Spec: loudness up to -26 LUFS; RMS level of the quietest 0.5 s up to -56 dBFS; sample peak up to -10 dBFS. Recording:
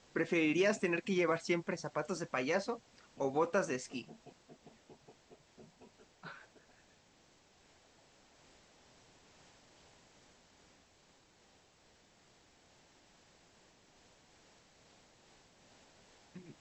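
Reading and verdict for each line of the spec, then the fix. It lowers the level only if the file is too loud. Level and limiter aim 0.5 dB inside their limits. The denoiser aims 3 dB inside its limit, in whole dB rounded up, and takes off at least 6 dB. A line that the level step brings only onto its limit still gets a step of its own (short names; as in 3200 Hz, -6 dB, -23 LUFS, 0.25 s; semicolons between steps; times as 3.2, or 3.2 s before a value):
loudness -35.0 LUFS: OK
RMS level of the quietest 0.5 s -67 dBFS: OK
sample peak -19.5 dBFS: OK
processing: none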